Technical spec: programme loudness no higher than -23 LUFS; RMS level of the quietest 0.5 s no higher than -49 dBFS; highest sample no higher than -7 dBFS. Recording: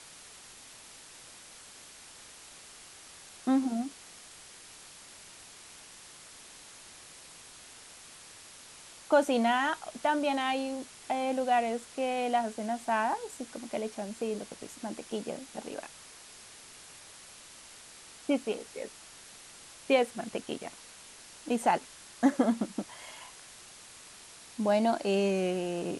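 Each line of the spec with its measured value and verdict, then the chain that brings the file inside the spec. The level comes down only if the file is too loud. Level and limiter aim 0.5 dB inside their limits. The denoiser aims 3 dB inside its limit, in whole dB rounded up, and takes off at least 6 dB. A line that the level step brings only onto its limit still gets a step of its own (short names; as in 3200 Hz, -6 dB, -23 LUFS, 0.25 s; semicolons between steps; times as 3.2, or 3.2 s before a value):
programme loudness -31.0 LUFS: OK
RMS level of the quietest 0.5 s -51 dBFS: OK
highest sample -12.5 dBFS: OK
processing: none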